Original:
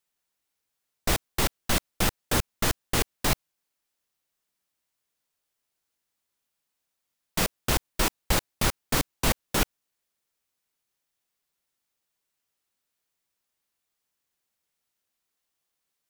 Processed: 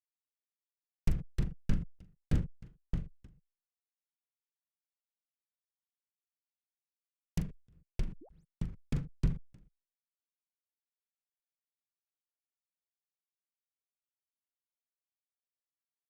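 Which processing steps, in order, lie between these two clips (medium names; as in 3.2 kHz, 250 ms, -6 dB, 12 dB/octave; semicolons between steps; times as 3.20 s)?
peak limiter -15 dBFS, peak gain reduction 6.5 dB; fifteen-band graphic EQ 160 Hz +10 dB, 630 Hz -4 dB, 4 kHz -7 dB, 16 kHz +8 dB; fuzz box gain 45 dB, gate -51 dBFS; low-pass that closes with the level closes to 1.4 kHz, closed at -16 dBFS; doubling 42 ms -3.5 dB; painted sound rise, 8.21–8.45 s, 260–11000 Hz -32 dBFS; amplifier tone stack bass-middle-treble 10-0-1; gate -48 dBFS, range -25 dB; endings held to a fixed fall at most 150 dB/s; trim +6 dB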